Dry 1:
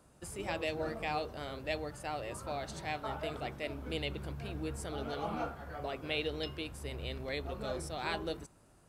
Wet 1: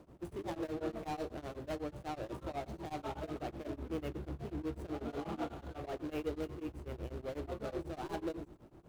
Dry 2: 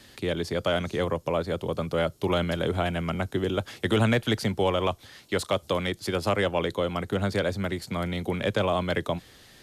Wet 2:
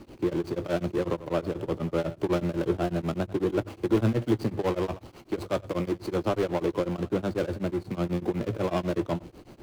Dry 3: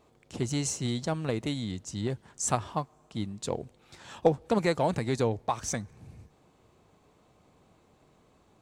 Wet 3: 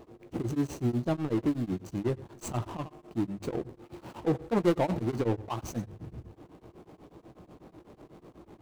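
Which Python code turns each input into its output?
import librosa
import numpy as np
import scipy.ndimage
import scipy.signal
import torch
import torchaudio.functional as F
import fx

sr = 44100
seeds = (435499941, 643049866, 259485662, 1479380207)

p1 = scipy.signal.medfilt(x, 25)
p2 = fx.peak_eq(p1, sr, hz=330.0, db=9.5, octaves=0.32)
p3 = fx.hum_notches(p2, sr, base_hz=50, count=2)
p4 = fx.power_curve(p3, sr, exponent=0.7)
p5 = fx.doubler(p4, sr, ms=17.0, db=-11)
p6 = p5 + fx.echo_single(p5, sr, ms=91, db=-16.5, dry=0)
p7 = p6 * np.abs(np.cos(np.pi * 8.1 * np.arange(len(p6)) / sr))
y = p7 * librosa.db_to_amplitude(-3.5)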